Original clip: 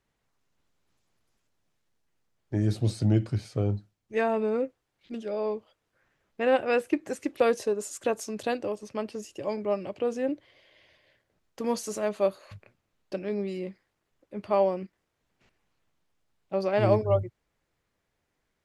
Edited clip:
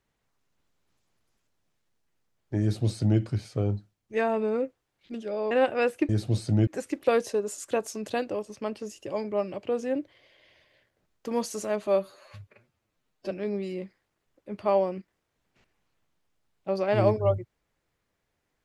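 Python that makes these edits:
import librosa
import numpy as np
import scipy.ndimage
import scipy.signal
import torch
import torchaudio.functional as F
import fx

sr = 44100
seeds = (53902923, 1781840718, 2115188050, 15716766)

y = fx.edit(x, sr, fx.duplicate(start_s=2.62, length_s=0.58, to_s=7.0),
    fx.cut(start_s=5.51, length_s=0.91),
    fx.stretch_span(start_s=12.2, length_s=0.96, factor=1.5), tone=tone)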